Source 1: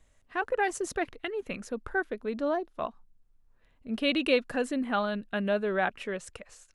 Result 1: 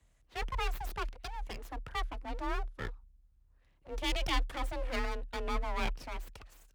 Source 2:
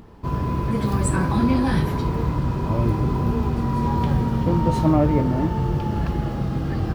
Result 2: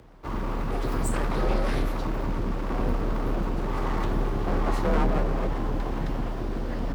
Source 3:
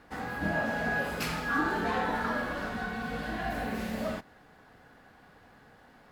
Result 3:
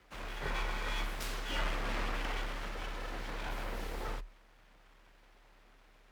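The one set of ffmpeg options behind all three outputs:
ffmpeg -i in.wav -af "aeval=exprs='abs(val(0))':channel_layout=same,afreqshift=35,volume=-4.5dB" out.wav

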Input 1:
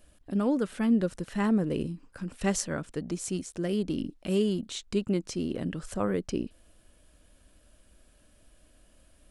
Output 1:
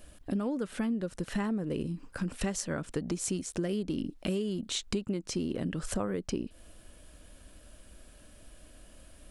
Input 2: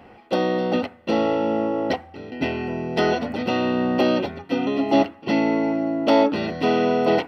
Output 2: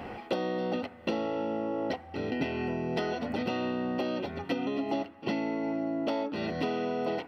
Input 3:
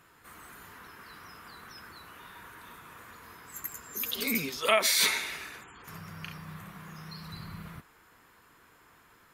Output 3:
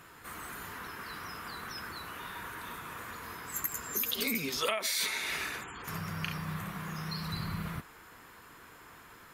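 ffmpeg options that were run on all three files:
ffmpeg -i in.wav -af "acompressor=threshold=-35dB:ratio=12,volume=6.5dB" out.wav

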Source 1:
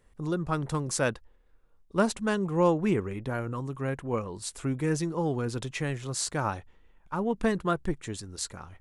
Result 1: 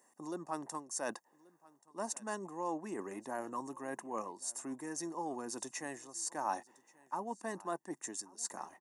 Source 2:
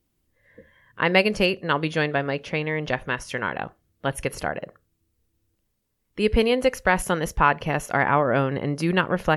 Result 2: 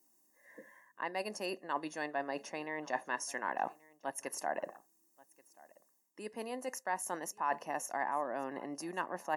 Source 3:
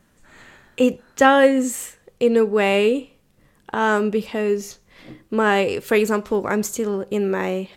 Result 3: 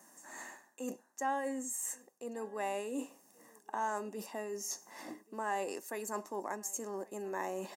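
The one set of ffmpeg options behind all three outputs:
ffmpeg -i in.wav -af "firequalizer=gain_entry='entry(720,0);entry(3200,-10);entry(6100,14)':delay=0.05:min_phase=1,areverse,acompressor=threshold=-33dB:ratio=10,areverse,highpass=frequency=300:width=0.5412,highpass=frequency=300:width=1.3066,highshelf=frequency=3700:gain=-10.5,aecho=1:1:1.1:0.65,aecho=1:1:1131:0.0668,volume=2dB" out.wav

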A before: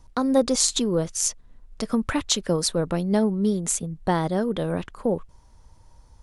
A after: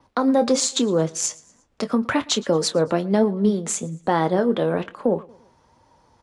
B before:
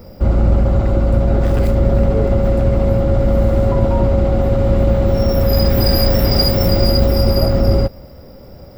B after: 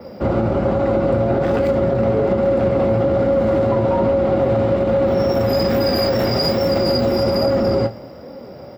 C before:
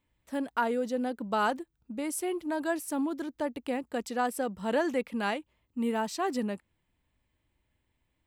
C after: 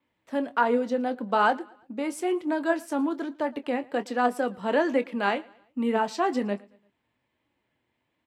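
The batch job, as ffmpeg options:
ffmpeg -i in.wav -filter_complex "[0:a]flanger=delay=3.5:depth=5.3:regen=65:speed=1.2:shape=sinusoidal,adynamicequalizer=threshold=0.00398:dfrequency=7300:dqfactor=2.8:tfrequency=7300:tqfactor=2.8:attack=5:release=100:ratio=0.375:range=3.5:mode=boostabove:tftype=bell,asplit=2[link_01][link_02];[link_02]adelay=25,volume=-13dB[link_03];[link_01][link_03]amix=inputs=2:normalize=0,acrossover=split=240|6500[link_04][link_05][link_06];[link_05]acontrast=52[link_07];[link_04][link_07][link_06]amix=inputs=3:normalize=0,highpass=120,asplit=2[link_08][link_09];[link_09]aecho=0:1:114|228|342:0.0631|0.0271|0.0117[link_10];[link_08][link_10]amix=inputs=2:normalize=0,aeval=exprs='0.841*(cos(1*acos(clip(val(0)/0.841,-1,1)))-cos(1*PI/2))+0.0133*(cos(7*acos(clip(val(0)/0.841,-1,1)))-cos(7*PI/2))':channel_layout=same,highshelf=frequency=5000:gain=-10.5,alimiter=level_in=13dB:limit=-1dB:release=50:level=0:latency=1,volume=-8dB" out.wav

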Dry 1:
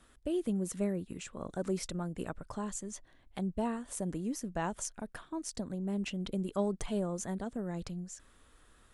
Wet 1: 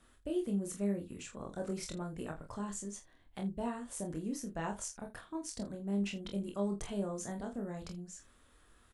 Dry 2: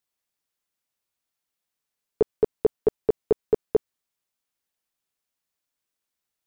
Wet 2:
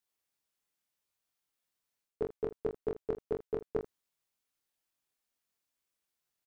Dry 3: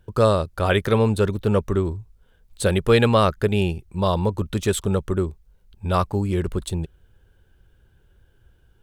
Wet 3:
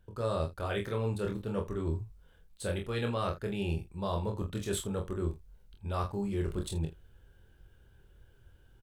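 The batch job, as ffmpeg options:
ffmpeg -i in.wav -af "areverse,acompressor=threshold=-28dB:ratio=6,areverse,aecho=1:1:25|45|80:0.631|0.376|0.141,volume=-4dB" out.wav

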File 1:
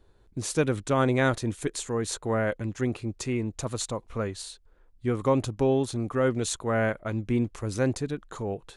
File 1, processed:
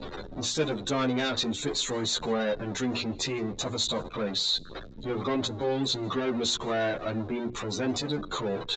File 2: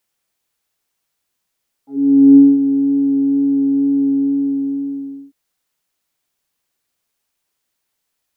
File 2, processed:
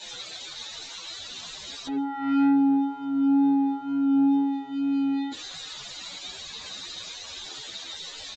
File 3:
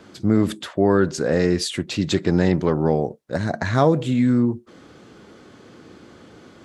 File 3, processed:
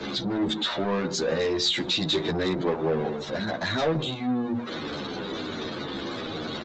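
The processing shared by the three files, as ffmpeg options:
ffmpeg -i in.wav -filter_complex "[0:a]aeval=exprs='val(0)+0.5*0.0668*sgn(val(0))':channel_layout=same,bandreject=frequency=60:width_type=h:width=6,bandreject=frequency=120:width_type=h:width=6,bandreject=frequency=180:width_type=h:width=6,bandreject=frequency=240:width_type=h:width=6,bandreject=frequency=300:width_type=h:width=6,bandreject=frequency=360:width_type=h:width=6,bandreject=frequency=420:width_type=h:width=6,afftdn=noise_reduction=23:noise_floor=-35,equalizer=frequency=3800:width_type=o:width=0.33:gain=14.5,acrossover=split=150|810|2400[link_01][link_02][link_03][link_04];[link_01]acompressor=threshold=-43dB:ratio=6[link_05];[link_05][link_02][link_03][link_04]amix=inputs=4:normalize=0,asoftclip=type=tanh:threshold=-17.5dB,asplit=2[link_06][link_07];[link_07]adelay=163.3,volume=-28dB,highshelf=frequency=4000:gain=-3.67[link_08];[link_06][link_08]amix=inputs=2:normalize=0,aresample=16000,aresample=44100,asplit=2[link_09][link_10];[link_10]adelay=11.2,afreqshift=-1.2[link_11];[link_09][link_11]amix=inputs=2:normalize=1" out.wav

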